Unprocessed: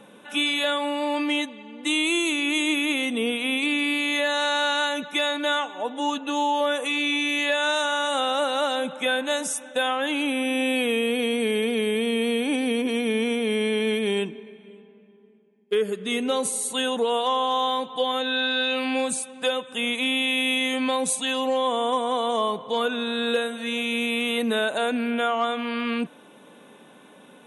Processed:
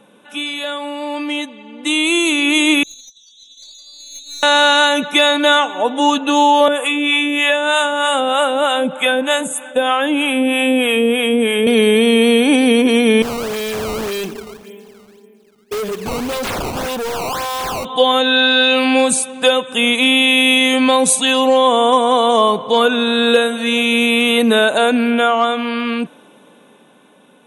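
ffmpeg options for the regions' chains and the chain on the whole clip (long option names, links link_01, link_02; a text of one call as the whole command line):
ffmpeg -i in.wav -filter_complex "[0:a]asettb=1/sr,asplit=3[link_01][link_02][link_03];[link_01]atrim=end=2.834[link_04];[link_02]atrim=start=2.83:end=4.43,asetpts=PTS-STARTPTS,afade=type=in:duration=0.004:curve=qsin,afade=type=out:start_time=1.596:duration=0.004:curve=qsin,asuperpass=centerf=5300:order=12:qfactor=1.9,asplit=2[link_05][link_06];[link_06]adelay=19,volume=-8.5dB[link_07];[link_05][link_07]amix=inputs=2:normalize=0,atrim=end_sample=70560,aeval=exprs='(tanh(63.1*val(0)+0.4)-tanh(0.4))/63.1':channel_layout=same[link_08];[link_03]atrim=start=4.426[link_09];[link_04][link_08]acrossfade=duration=0.004:curve1=hsin:curve2=qsin[link_10];[link_10][link_09]acrossfade=duration=0.004:curve1=qsin:curve2=hsin,asettb=1/sr,asplit=3[link_11][link_12][link_13];[link_11]atrim=end=6.684[link_14];[link_12]atrim=start=6.68:end=11.67,asetpts=PTS-STARTPTS,afade=type=in:duration=0.004:curve=qsin,afade=type=out:start_time=4.986:duration=0.004:curve=qsin,acrossover=split=640[link_15][link_16];[link_15]aeval=exprs='val(0)*(1-0.7/2+0.7/2*cos(2*PI*3.2*n/s))':channel_layout=same[link_17];[link_16]aeval=exprs='val(0)*(1-0.7/2-0.7/2*cos(2*PI*3.2*n/s))':channel_layout=same[link_18];[link_17][link_18]amix=inputs=2:normalize=0,asuperstop=centerf=5000:order=8:qfactor=1.6[link_19];[link_13]atrim=start=11.666[link_20];[link_14][link_19]acrossfade=duration=0.004:curve1=hsin:curve2=qsin[link_21];[link_21][link_20]acrossfade=duration=0.004:curve1=qsin:curve2=hsin,asettb=1/sr,asplit=3[link_22][link_23][link_24];[link_22]atrim=end=13.224[link_25];[link_23]atrim=start=13.22:end=17.85,asetpts=PTS-STARTPTS,afade=type=in:duration=0.004:curve=qsin,afade=type=out:start_time=4.626:duration=0.004:curve=qsin,lowshelf=frequency=250:gain=-9,acrusher=samples=15:mix=1:aa=0.000001:lfo=1:lforange=24:lforate=1.8,volume=33dB,asoftclip=hard,volume=-33dB[link_26];[link_24]atrim=start=17.846[link_27];[link_25][link_26]acrossfade=duration=0.004:curve1=hsin:curve2=qsin[link_28];[link_28][link_27]acrossfade=duration=0.004:curve1=qsin:curve2=hsin,equalizer=frequency=1900:width_type=o:width=0.28:gain=-3,dynaudnorm=framelen=320:gausssize=13:maxgain=14.5dB" out.wav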